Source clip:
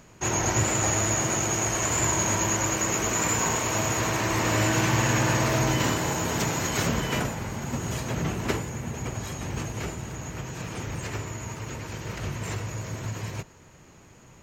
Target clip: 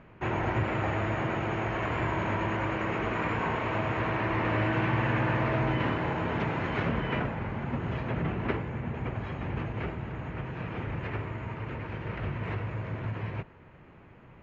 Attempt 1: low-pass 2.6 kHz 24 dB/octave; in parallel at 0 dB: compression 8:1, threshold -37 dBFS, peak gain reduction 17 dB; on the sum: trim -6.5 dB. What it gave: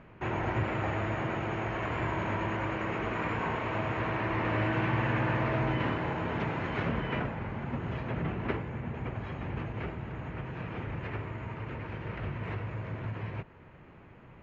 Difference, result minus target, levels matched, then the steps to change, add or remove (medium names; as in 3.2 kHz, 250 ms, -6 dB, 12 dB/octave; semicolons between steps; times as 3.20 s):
compression: peak gain reduction +8.5 dB
change: compression 8:1, threshold -27.5 dBFS, peak gain reduction 8.5 dB